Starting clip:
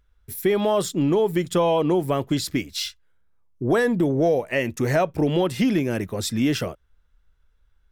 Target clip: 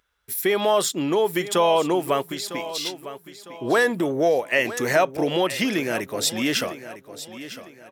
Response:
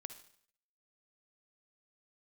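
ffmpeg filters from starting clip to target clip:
-filter_complex "[0:a]highpass=frequency=820:poles=1,asplit=3[link_01][link_02][link_03];[link_01]afade=type=out:start_time=2.21:duration=0.02[link_04];[link_02]acompressor=threshold=-35dB:ratio=4,afade=type=in:start_time=2.21:duration=0.02,afade=type=out:start_time=2.85:duration=0.02[link_05];[link_03]afade=type=in:start_time=2.85:duration=0.02[link_06];[link_04][link_05][link_06]amix=inputs=3:normalize=0,aecho=1:1:954|1908|2862|3816:0.2|0.0738|0.0273|0.0101,volume=6dB"

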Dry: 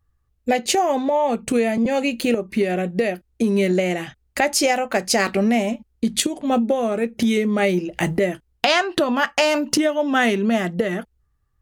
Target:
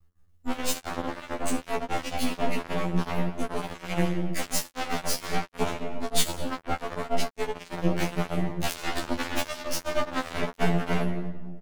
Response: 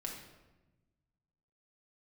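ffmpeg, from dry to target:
-filter_complex "[0:a]equalizer=frequency=1200:width=0.81:gain=-3,asplit=2[link_01][link_02];[link_02]adelay=13,volume=-9.5dB[link_03];[link_01][link_03]amix=inputs=2:normalize=0,aeval=exprs='0.631*(cos(1*acos(clip(val(0)/0.631,-1,1)))-cos(1*PI/2))+0.2*(cos(4*acos(clip(val(0)/0.631,-1,1)))-cos(4*PI/2))':channel_layout=same,asplit=2[link_04][link_05];[1:a]atrim=start_sample=2205,adelay=16[link_06];[link_05][link_06]afir=irnorm=-1:irlink=0,volume=-2dB[link_07];[link_04][link_07]amix=inputs=2:normalize=0,aeval=exprs='max(val(0),0)':channel_layout=same,afftfilt=real='re*2*eq(mod(b,4),0)':imag='im*2*eq(mod(b,4),0)':win_size=2048:overlap=0.75,volume=5dB"

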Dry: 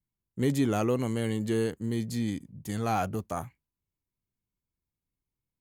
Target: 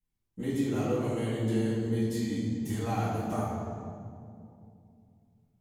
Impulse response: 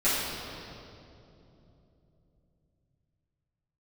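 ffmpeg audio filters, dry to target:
-filter_complex "[0:a]acompressor=threshold=-32dB:ratio=6[link_01];[1:a]atrim=start_sample=2205,asetrate=61740,aresample=44100[link_02];[link_01][link_02]afir=irnorm=-1:irlink=0,volume=-6.5dB"

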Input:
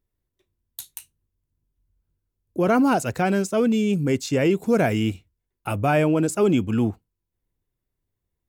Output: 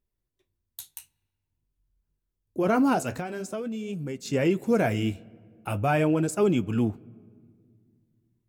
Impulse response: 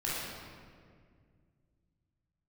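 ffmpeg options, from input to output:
-filter_complex "[0:a]flanger=delay=4.8:depth=8.4:regen=-56:speed=0.47:shape=sinusoidal,asplit=2[link_01][link_02];[1:a]atrim=start_sample=2205,highshelf=frequency=4100:gain=-7.5[link_03];[link_02][link_03]afir=irnorm=-1:irlink=0,volume=-29dB[link_04];[link_01][link_04]amix=inputs=2:normalize=0,asettb=1/sr,asplit=3[link_05][link_06][link_07];[link_05]atrim=end=3.164[link_08];[link_06]atrim=start=3.16:end=4.26,asetpts=PTS-STARTPTS,afade=type=in:duration=0.004:curve=qsin,afade=type=out:start_time=1.096:duration=0.004:curve=qsin,acompressor=threshold=-30dB:ratio=10[link_09];[link_07]atrim=start=4.256[link_10];[link_08][link_09]acrossfade=duration=0.004:curve1=hsin:curve2=qsin[link_11];[link_11][link_10]acrossfade=duration=0.004:curve1=qsin:curve2=hsin"

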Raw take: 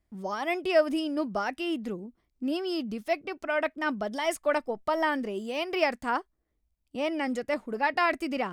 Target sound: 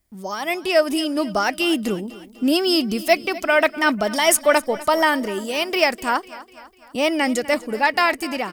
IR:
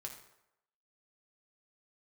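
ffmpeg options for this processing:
-filter_complex "[0:a]crystalizer=i=8:c=0,tiltshelf=frequency=1400:gain=4,dynaudnorm=framelen=170:gausssize=11:maxgain=10dB,asplit=2[link_01][link_02];[link_02]aecho=0:1:249|498|747|996:0.126|0.0655|0.034|0.0177[link_03];[link_01][link_03]amix=inputs=2:normalize=0,volume=-1dB"

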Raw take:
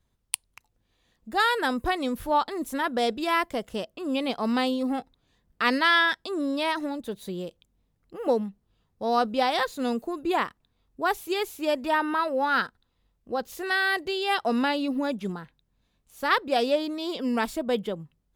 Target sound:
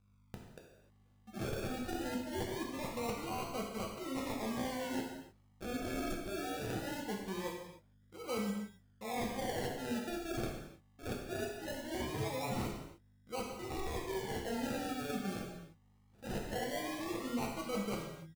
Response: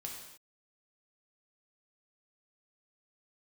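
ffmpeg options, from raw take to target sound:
-filter_complex "[0:a]agate=range=-6dB:threshold=-56dB:ratio=16:detection=peak,areverse,acompressor=threshold=-34dB:ratio=6,areverse,aeval=exprs='val(0)+0.000631*(sin(2*PI*50*n/s)+sin(2*PI*2*50*n/s)/2+sin(2*PI*3*50*n/s)/3+sin(2*PI*4*50*n/s)/4+sin(2*PI*5*50*n/s)/5)':channel_layout=same,aresample=16000,aeval=exprs='(mod(21.1*val(0)+1,2)-1)/21.1':channel_layout=same,aresample=44100,acrusher=samples=35:mix=1:aa=0.000001:lfo=1:lforange=21:lforate=0.21[link_01];[1:a]atrim=start_sample=2205[link_02];[link_01][link_02]afir=irnorm=-1:irlink=0"

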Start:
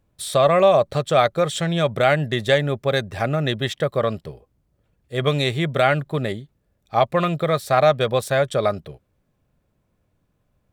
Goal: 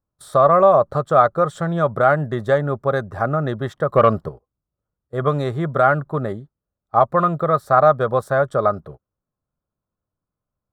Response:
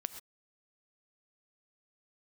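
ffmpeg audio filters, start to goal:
-filter_complex "[0:a]agate=range=-17dB:threshold=-38dB:ratio=16:detection=peak,highshelf=frequency=1800:width_type=q:width=3:gain=-11.5,asettb=1/sr,asplit=3[link_01][link_02][link_03];[link_01]atrim=end=3.894[link_04];[link_02]atrim=start=3.89:end=4.29,asetpts=PTS-STARTPTS,afade=type=in:duration=0.004:curve=qsin,afade=type=out:start_time=0.396:duration=0.004:curve=qsin,acontrast=66[link_05];[link_03]atrim=start=4.286[link_06];[link_04][link_05]acrossfade=duration=0.004:curve1=hsin:curve2=qsin[link_07];[link_07][link_06]acrossfade=duration=0.004:curve1=qsin:curve2=hsin"

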